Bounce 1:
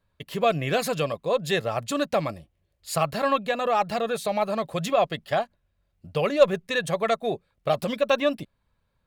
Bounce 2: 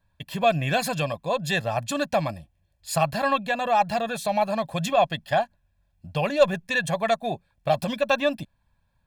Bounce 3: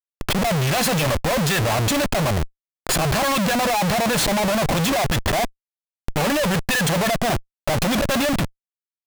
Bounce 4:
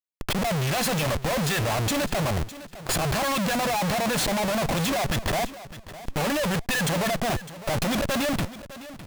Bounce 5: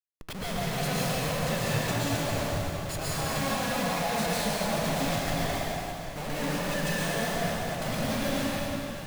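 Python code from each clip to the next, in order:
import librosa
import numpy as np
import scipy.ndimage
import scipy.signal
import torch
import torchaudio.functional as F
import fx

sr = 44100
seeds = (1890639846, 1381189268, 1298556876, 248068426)

y1 = x + 0.64 * np.pad(x, (int(1.2 * sr / 1000.0), 0))[:len(x)]
y2 = fx.leveller(y1, sr, passes=3)
y2 = fx.auto_swell(y2, sr, attack_ms=145.0)
y2 = fx.schmitt(y2, sr, flips_db=-34.0)
y2 = y2 * 10.0 ** (-1.5 / 20.0)
y3 = fx.echo_feedback(y2, sr, ms=607, feedback_pct=20, wet_db=-15.5)
y3 = y3 * 10.0 ** (-5.0 / 20.0)
y4 = fx.comb_fb(y3, sr, f0_hz=160.0, decay_s=0.5, harmonics='all', damping=0.0, mix_pct=40)
y4 = fx.rev_plate(y4, sr, seeds[0], rt60_s=3.1, hf_ratio=0.9, predelay_ms=105, drr_db=-8.0)
y4 = y4 * 10.0 ** (-8.5 / 20.0)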